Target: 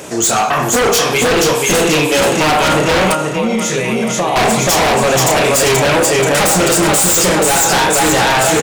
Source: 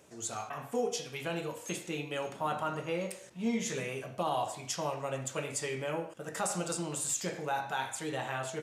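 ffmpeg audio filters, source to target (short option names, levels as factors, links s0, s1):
-filter_complex "[0:a]asplit=2[s0][s1];[s1]adelay=32,volume=0.422[s2];[s0][s2]amix=inputs=2:normalize=0,aecho=1:1:481|962|1443|1924|2405|2886:0.631|0.315|0.158|0.0789|0.0394|0.0197,asettb=1/sr,asplit=3[s3][s4][s5];[s3]atrim=end=3.134[s6];[s4]atrim=start=3.13:end=4.36,asetpts=PTS-STARTPTS,afade=t=in:d=0.004:c=qsin,afade=t=out:st=1.226:d=0.004:c=qsin,acompressor=threshold=0.00794:ratio=4[s7];[s5]atrim=start=4.356[s8];[s6][s7]acrossfade=d=0.004:c1=hsin:c2=qsin[s9];[s9][s8]acrossfade=d=0.004:c1=qsin:c2=hsin,asoftclip=type=hard:threshold=0.0422,lowshelf=f=74:g=-11.5,aeval=exprs='0.106*sin(PI/2*4.47*val(0)/0.106)':c=same,alimiter=level_in=10.6:limit=0.891:release=50:level=0:latency=1,volume=0.422"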